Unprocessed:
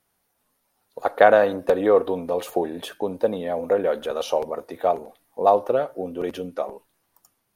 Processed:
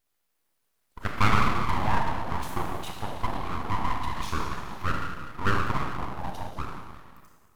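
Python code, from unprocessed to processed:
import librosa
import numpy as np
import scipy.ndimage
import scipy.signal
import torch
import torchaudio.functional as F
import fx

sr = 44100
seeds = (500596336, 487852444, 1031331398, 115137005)

y = fx.rev_schroeder(x, sr, rt60_s=1.8, comb_ms=25, drr_db=0.5)
y = fx.spec_erase(y, sr, start_s=5.97, length_s=0.98, low_hz=1100.0, high_hz=3200.0)
y = np.abs(y)
y = y * librosa.db_to_amplitude(-5.5)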